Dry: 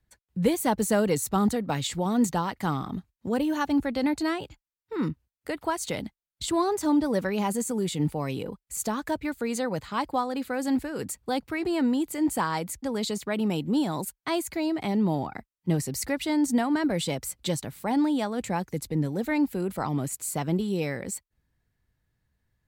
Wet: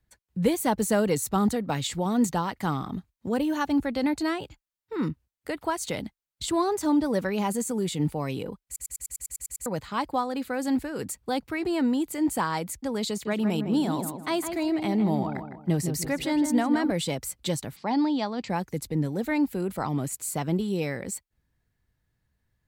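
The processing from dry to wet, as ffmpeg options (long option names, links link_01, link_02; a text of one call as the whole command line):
ffmpeg -i in.wav -filter_complex "[0:a]asettb=1/sr,asplit=3[link_01][link_02][link_03];[link_01]atrim=end=13.094[link_04];[link_02]atrim=start=13.09:end=16.91,asetpts=PTS-STARTPTS,afade=type=in:duration=0.004:curve=qsin,afade=type=out:start_time=3.816:duration=0.004:curve=qsin,asplit=2[link_05][link_06];[link_06]adelay=158,lowpass=frequency=1700:poles=1,volume=-6.5dB,asplit=2[link_07][link_08];[link_08]adelay=158,lowpass=frequency=1700:poles=1,volume=0.4,asplit=2[link_09][link_10];[link_10]adelay=158,lowpass=frequency=1700:poles=1,volume=0.4,asplit=2[link_11][link_12];[link_12]adelay=158,lowpass=frequency=1700:poles=1,volume=0.4,asplit=2[link_13][link_14];[link_14]adelay=158,lowpass=frequency=1700:poles=1,volume=0.4[link_15];[link_05][link_07][link_09][link_11][link_13][link_15]amix=inputs=6:normalize=0,atrim=end_sample=168462[link_16];[link_03]atrim=start=16.906[link_17];[link_04][link_16]acrossfade=duration=0.004:curve1=hsin:curve2=qsin[link_18];[link_18][link_17]acrossfade=duration=0.004:curve1=qsin:curve2=hsin,asplit=3[link_19][link_20][link_21];[link_19]afade=type=out:start_time=17.75:duration=0.02[link_22];[link_20]highpass=150,equalizer=frequency=490:width_type=q:width=4:gain=-4,equalizer=frequency=940:width_type=q:width=4:gain=3,equalizer=frequency=1500:width_type=q:width=4:gain=-4,equalizer=frequency=4800:width_type=q:width=4:gain=9,lowpass=frequency=5400:width=0.5412,lowpass=frequency=5400:width=1.3066,afade=type=in:start_time=17.75:duration=0.02,afade=type=out:start_time=18.48:duration=0.02[link_23];[link_21]afade=type=in:start_time=18.48:duration=0.02[link_24];[link_22][link_23][link_24]amix=inputs=3:normalize=0,asplit=11[link_25][link_26][link_27][link_28][link_29][link_30][link_31][link_32][link_33][link_34][link_35];[link_25]atrim=end=8.762[link_36];[link_26]atrim=start=8.658:end=8.762[link_37];[link_27]atrim=start=8.658:end=8.762[link_38];[link_28]atrim=start=8.658:end=8.762[link_39];[link_29]atrim=start=8.658:end=8.762[link_40];[link_30]atrim=start=8.658:end=8.762[link_41];[link_31]atrim=start=8.658:end=8.762[link_42];[link_32]atrim=start=8.658:end=8.762[link_43];[link_33]atrim=start=8.658:end=8.762[link_44];[link_34]atrim=start=8.658:end=8.762[link_45];[link_35]atrim=start=9.658[link_46];[link_36][link_37]acrossfade=duration=0.004:curve1=hsin:curve2=hsin[link_47];[link_47][link_38]acrossfade=duration=0.004:curve1=hsin:curve2=hsin[link_48];[link_48][link_39]acrossfade=duration=0.004:curve1=hsin:curve2=hsin[link_49];[link_49][link_40]acrossfade=duration=0.004:curve1=hsin:curve2=hsin[link_50];[link_50][link_41]acrossfade=duration=0.004:curve1=hsin:curve2=hsin[link_51];[link_51][link_42]acrossfade=duration=0.004:curve1=hsin:curve2=hsin[link_52];[link_52][link_43]acrossfade=duration=0.004:curve1=hsin:curve2=hsin[link_53];[link_53][link_44]acrossfade=duration=0.004:curve1=hsin:curve2=hsin[link_54];[link_54][link_45]acrossfade=duration=0.004:curve1=hsin:curve2=hsin[link_55];[link_55][link_46]acrossfade=duration=0.004:curve1=hsin:curve2=hsin" out.wav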